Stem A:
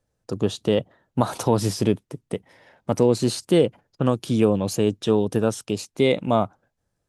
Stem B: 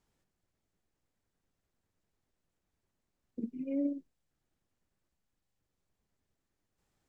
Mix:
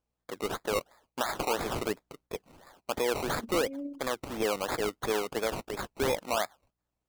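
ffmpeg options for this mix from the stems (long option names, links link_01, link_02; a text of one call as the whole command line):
ffmpeg -i stem1.wav -i stem2.wav -filter_complex "[0:a]highpass=660,acrusher=samples=21:mix=1:aa=0.000001:lfo=1:lforange=12.6:lforate=2.9,volume=-0.5dB[link_01];[1:a]aeval=exprs='val(0)+0.000178*(sin(2*PI*60*n/s)+sin(2*PI*2*60*n/s)/2+sin(2*PI*3*60*n/s)/3+sin(2*PI*4*60*n/s)/4+sin(2*PI*5*60*n/s)/5)':channel_layout=same,volume=-6dB[link_02];[link_01][link_02]amix=inputs=2:normalize=0,agate=range=-7dB:threshold=-59dB:ratio=16:detection=peak,alimiter=limit=-20dB:level=0:latency=1:release=19" out.wav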